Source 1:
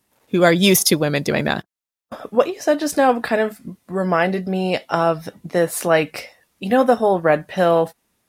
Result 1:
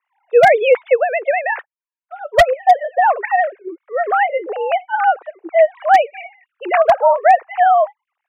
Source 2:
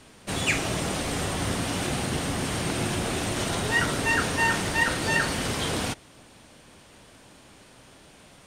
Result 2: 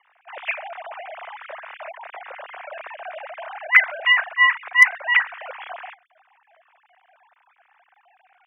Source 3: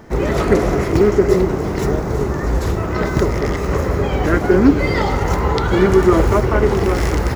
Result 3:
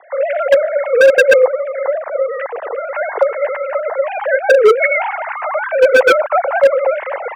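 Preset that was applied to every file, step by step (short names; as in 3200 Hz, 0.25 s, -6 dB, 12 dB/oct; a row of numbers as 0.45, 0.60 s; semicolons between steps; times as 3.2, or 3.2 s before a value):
sine-wave speech; mistuned SSB +130 Hz 200–2500 Hz; wavefolder -6 dBFS; normalise peaks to -2 dBFS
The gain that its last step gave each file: +4.0, +4.0, +4.0 dB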